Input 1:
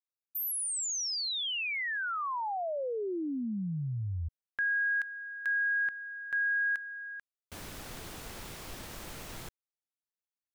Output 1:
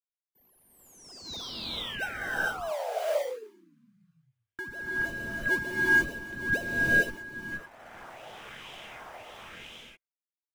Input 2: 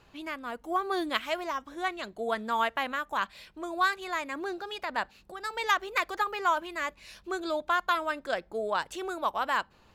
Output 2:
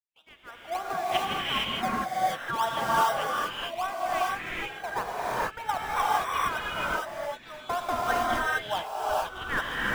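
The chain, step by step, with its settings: opening faded in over 0.84 s; gate with hold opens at -51 dBFS; HPF 490 Hz 12 dB/oct; bell 4400 Hz -10.5 dB 0.27 oct; wah 0.99 Hz 650–3300 Hz, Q 4.2; in parallel at -6.5 dB: decimation with a swept rate 27×, swing 60% 3.3 Hz; on the sum: non-linear reverb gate 0.49 s rising, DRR -6.5 dB; gain +4 dB

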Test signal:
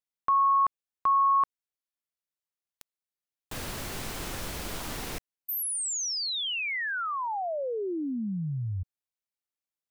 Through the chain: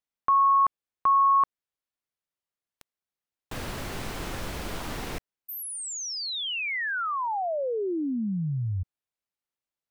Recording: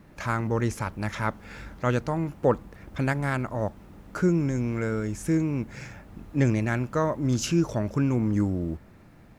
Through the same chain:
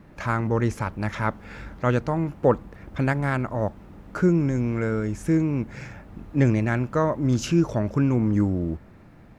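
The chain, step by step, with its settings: high shelf 4300 Hz -8.5 dB; gain +3 dB

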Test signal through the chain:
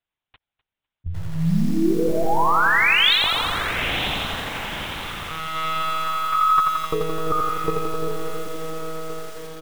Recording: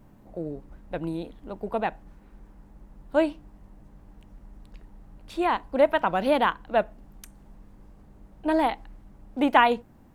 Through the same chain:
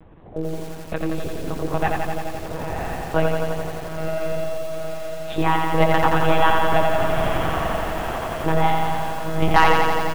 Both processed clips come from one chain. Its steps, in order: low shelf 100 Hz -11 dB; diffused feedback echo 0.966 s, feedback 48%, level -8 dB; in parallel at +2.5 dB: compressor 16:1, threshold -31 dBFS; on the sum: monotone LPC vocoder at 8 kHz 160 Hz; dynamic EQ 590 Hz, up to -6 dB, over -38 dBFS, Q 3.1; feedback echo 0.252 s, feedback 23%, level -21 dB; hard clip -6.5 dBFS; lo-fi delay 86 ms, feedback 80%, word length 7-bit, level -3.5 dB; gain +2.5 dB

